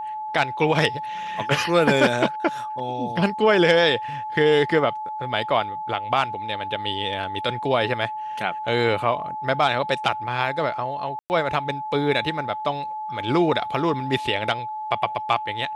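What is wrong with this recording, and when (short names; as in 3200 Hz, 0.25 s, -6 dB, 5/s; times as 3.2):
tone 860 Hz -28 dBFS
11.19–11.3 gap 0.109 s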